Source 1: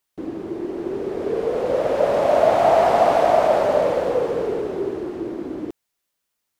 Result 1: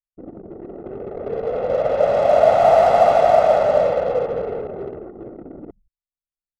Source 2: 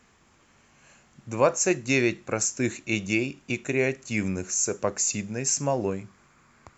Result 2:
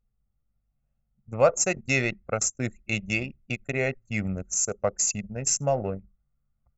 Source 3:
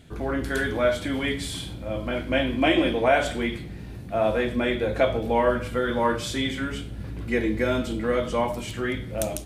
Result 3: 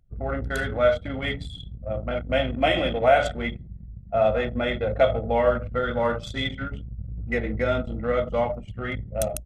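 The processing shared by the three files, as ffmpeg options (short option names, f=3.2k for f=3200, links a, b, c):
-filter_complex "[0:a]asplit=3[a][b][c];[b]adelay=83,afreqshift=-140,volume=-21.5dB[d];[c]adelay=166,afreqshift=-280,volume=-32dB[e];[a][d][e]amix=inputs=3:normalize=0,anlmdn=100,aecho=1:1:1.5:0.63,volume=-1dB"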